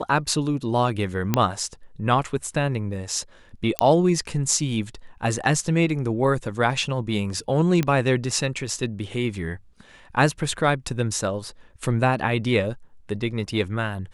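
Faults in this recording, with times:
1.34 s: pop -5 dBFS
3.79 s: pop -2 dBFS
7.83 s: pop -10 dBFS

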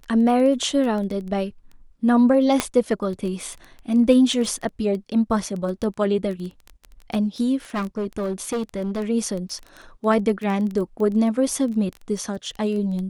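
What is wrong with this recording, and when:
crackle 13 per s -27 dBFS
2.60 s: pop -5 dBFS
4.58 s: dropout 3.1 ms
7.74–9.05 s: clipped -21 dBFS

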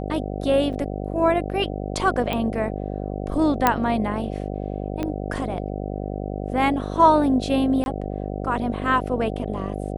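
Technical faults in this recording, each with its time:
buzz 50 Hz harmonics 15 -29 dBFS
0.73 s: dropout 4 ms
2.33 s: pop -13 dBFS
3.67 s: pop -3 dBFS
5.03 s: pop -14 dBFS
7.84–7.86 s: dropout 21 ms

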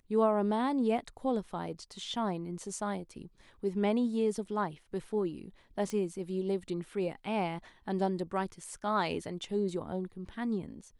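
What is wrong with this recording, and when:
5.90 s: pop -24 dBFS

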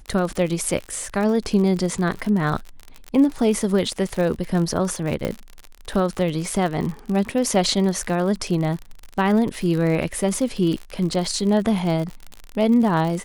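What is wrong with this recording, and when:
crackle 61 per s -26 dBFS
5.25 s: pop -11 dBFS

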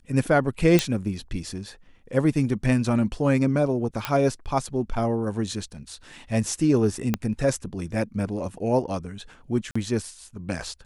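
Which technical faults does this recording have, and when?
0.79 s: pop -4 dBFS
4.05 s: pop -10 dBFS
7.14 s: pop -9 dBFS
9.71–9.76 s: dropout 45 ms

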